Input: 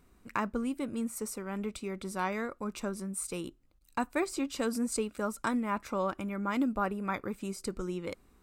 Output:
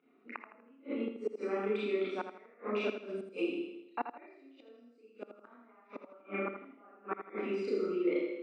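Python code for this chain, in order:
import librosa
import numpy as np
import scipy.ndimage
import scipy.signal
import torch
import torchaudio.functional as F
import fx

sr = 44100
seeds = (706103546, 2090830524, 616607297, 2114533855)

p1 = fx.envelope_sharpen(x, sr, power=1.5)
p2 = fx.rev_schroeder(p1, sr, rt60_s=0.84, comb_ms=26, drr_db=-8.5)
p3 = fx.gate_flip(p2, sr, shuts_db=-17.0, range_db=-31)
p4 = fx.cabinet(p3, sr, low_hz=310.0, low_slope=24, high_hz=3100.0, hz=(530.0, 1000.0, 1600.0, 2500.0), db=(-5, -10, -6, 3))
y = p4 + fx.echo_feedback(p4, sr, ms=81, feedback_pct=38, wet_db=-8.5, dry=0)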